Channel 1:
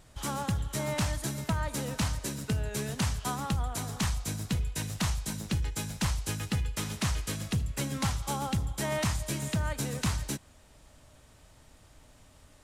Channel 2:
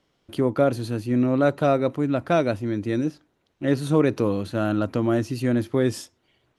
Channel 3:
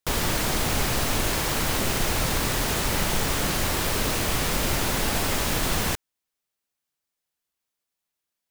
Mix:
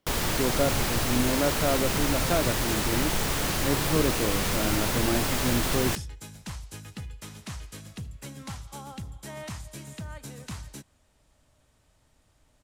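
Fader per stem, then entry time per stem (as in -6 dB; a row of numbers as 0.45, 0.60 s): -8.5, -6.5, -2.5 dB; 0.45, 0.00, 0.00 s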